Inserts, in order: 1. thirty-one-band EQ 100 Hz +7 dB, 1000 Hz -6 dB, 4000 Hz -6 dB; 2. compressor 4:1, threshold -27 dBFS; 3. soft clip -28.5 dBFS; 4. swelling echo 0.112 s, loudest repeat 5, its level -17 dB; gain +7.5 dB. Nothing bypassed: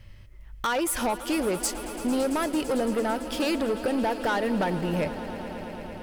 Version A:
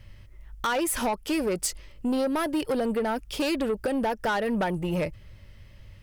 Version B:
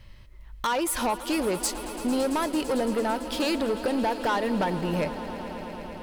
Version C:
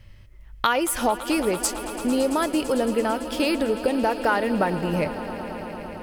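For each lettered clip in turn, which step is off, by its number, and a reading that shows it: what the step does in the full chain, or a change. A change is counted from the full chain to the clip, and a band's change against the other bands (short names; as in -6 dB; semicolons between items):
4, echo-to-direct -7.5 dB to none; 1, 4 kHz band +1.5 dB; 3, distortion -11 dB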